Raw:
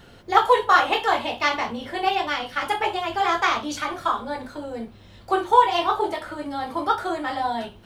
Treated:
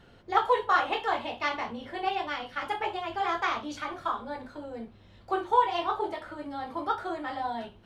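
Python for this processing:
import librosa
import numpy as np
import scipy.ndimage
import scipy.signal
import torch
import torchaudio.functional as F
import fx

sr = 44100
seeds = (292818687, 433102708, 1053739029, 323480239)

y = fx.high_shelf(x, sr, hz=6300.0, db=-12.0)
y = y * 10.0 ** (-7.0 / 20.0)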